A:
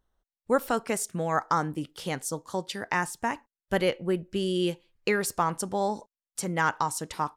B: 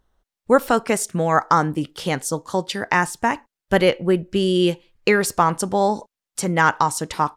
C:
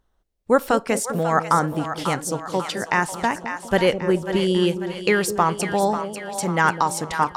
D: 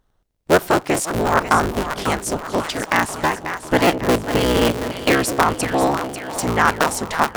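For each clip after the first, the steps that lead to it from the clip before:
high-shelf EQ 8,500 Hz −5.5 dB; level +9 dB
echo with a time of its own for lows and highs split 620 Hz, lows 206 ms, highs 543 ms, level −9 dB; level −2 dB
sub-harmonics by changed cycles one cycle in 3, inverted; level +2.5 dB

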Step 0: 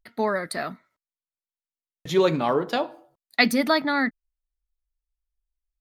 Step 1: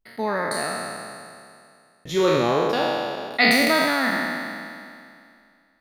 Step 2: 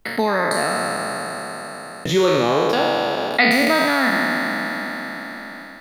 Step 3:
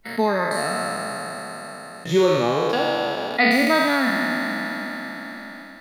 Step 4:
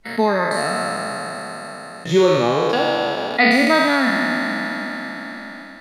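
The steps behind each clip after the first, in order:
peak hold with a decay on every bin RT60 2.34 s; level −3 dB
multiband upward and downward compressor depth 70%; level +4 dB
harmonic and percussive parts rebalanced percussive −17 dB
low-pass filter 9,800 Hz 12 dB per octave; level +3 dB

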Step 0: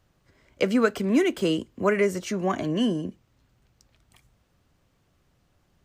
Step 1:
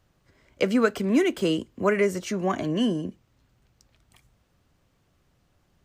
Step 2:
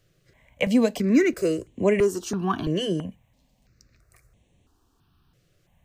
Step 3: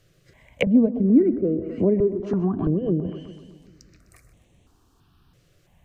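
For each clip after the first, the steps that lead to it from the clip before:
no processing that can be heard
step-sequenced phaser 3 Hz 240–4,900 Hz; level +4 dB
echo with a time of its own for lows and highs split 310 Hz, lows 196 ms, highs 127 ms, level −13.5 dB; treble cut that deepens with the level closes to 360 Hz, closed at −21 dBFS; level +4.5 dB

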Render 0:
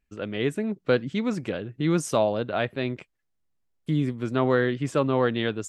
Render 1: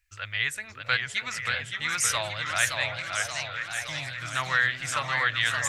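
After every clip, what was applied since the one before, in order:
drawn EQ curve 100 Hz 0 dB, 200 Hz −30 dB, 410 Hz −28 dB, 590 Hz −14 dB, 1,900 Hz +10 dB, 3,000 Hz +5 dB, 4,900 Hz +10 dB
echo through a band-pass that steps 326 ms, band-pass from 250 Hz, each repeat 1.4 octaves, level −1.5 dB
feedback echo with a swinging delay time 574 ms, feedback 62%, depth 187 cents, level −5 dB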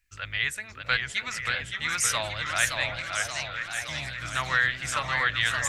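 sub-octave generator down 1 octave, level −5 dB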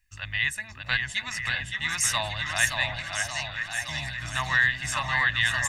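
comb filter 1.1 ms, depth 72%
level −1 dB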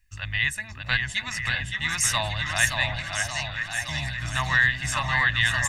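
low-shelf EQ 220 Hz +5.5 dB
level +1.5 dB

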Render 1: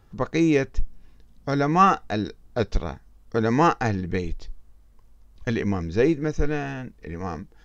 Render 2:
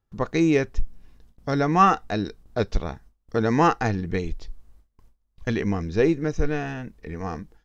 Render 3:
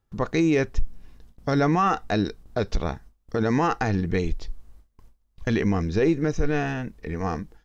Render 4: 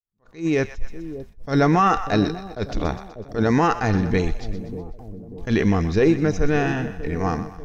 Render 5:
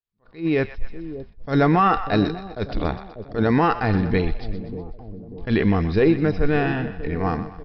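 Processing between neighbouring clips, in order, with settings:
noise gate with hold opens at −41 dBFS
brickwall limiter −16 dBFS, peak gain reduction 10.5 dB; level +3.5 dB
fade in at the beginning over 0.80 s; echo with a time of its own for lows and highs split 660 Hz, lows 592 ms, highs 124 ms, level −12.5 dB; level that may rise only so fast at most 220 dB per second; level +4 dB
downsampling to 11,025 Hz

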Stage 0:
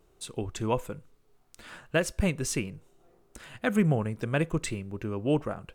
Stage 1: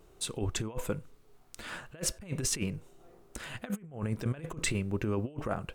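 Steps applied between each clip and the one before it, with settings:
compressor whose output falls as the input rises −33 dBFS, ratio −0.5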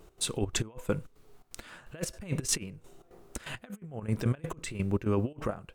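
gate pattern "x.xxx.x...x" 169 BPM −12 dB
level +4 dB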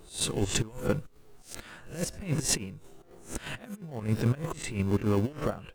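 peak hold with a rise ahead of every peak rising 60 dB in 0.30 s
in parallel at −12 dB: decimation without filtering 35×

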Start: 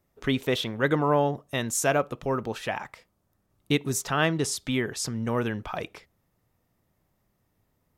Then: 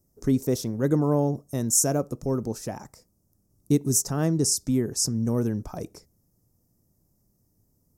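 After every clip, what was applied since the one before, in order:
drawn EQ curve 290 Hz 0 dB, 3,300 Hz −26 dB, 5,400 Hz +3 dB
level +4.5 dB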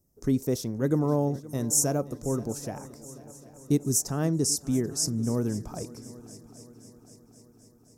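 echo machine with several playback heads 262 ms, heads second and third, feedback 56%, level −19.5 dB
level −2.5 dB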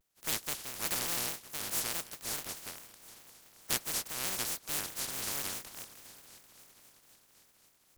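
compressing power law on the bin magnitudes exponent 0.1
pitch modulation by a square or saw wave square 4.7 Hz, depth 250 cents
level −9 dB

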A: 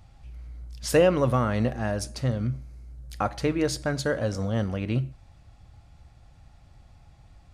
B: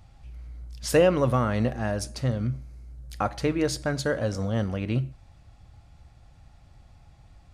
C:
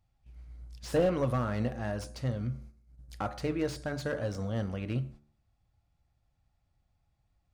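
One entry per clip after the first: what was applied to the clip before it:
no processing that can be heard
noise gate −41 dBFS, range −15 dB; hum removal 73.41 Hz, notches 23; slew-rate limiting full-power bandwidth 81 Hz; level −6 dB

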